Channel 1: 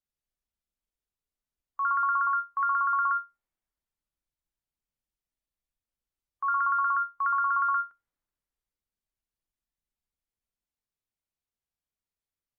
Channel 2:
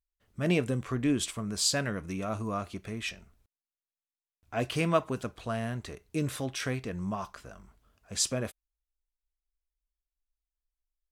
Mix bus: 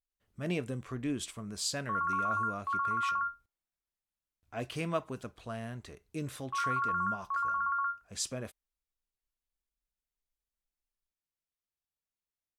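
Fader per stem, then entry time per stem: −6.0, −7.0 decibels; 0.10, 0.00 seconds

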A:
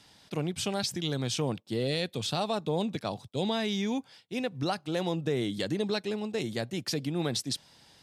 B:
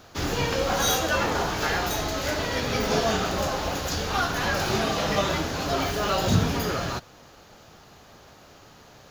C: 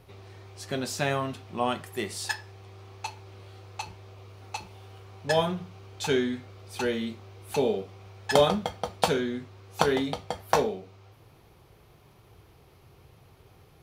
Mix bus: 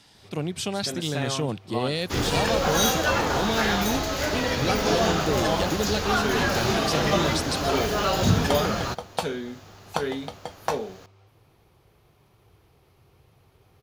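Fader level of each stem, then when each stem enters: +2.5, +1.0, −3.5 decibels; 0.00, 1.95, 0.15 seconds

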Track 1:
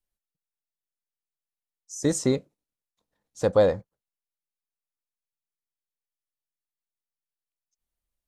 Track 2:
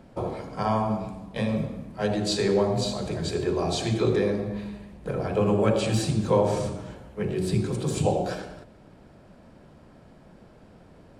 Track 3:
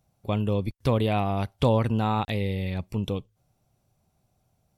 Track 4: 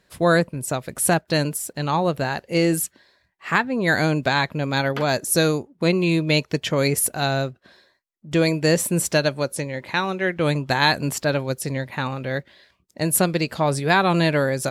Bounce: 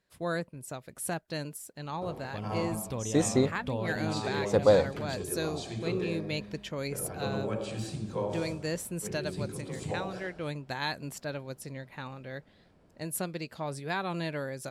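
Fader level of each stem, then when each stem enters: −2.0, −11.5, −12.5, −15.0 decibels; 1.10, 1.85, 2.05, 0.00 seconds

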